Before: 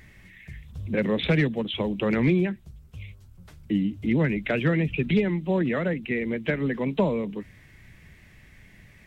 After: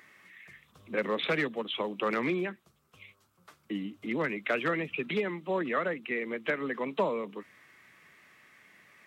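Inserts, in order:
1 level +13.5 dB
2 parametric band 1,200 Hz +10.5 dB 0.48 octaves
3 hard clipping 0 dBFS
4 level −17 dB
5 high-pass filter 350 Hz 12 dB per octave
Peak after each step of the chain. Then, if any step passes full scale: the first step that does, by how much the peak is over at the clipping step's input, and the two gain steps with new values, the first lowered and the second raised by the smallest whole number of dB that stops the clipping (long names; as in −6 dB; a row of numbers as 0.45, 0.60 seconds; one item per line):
+1.0, +3.0, 0.0, −17.0, −16.0 dBFS
step 1, 3.0 dB
step 1 +10.5 dB, step 4 −14 dB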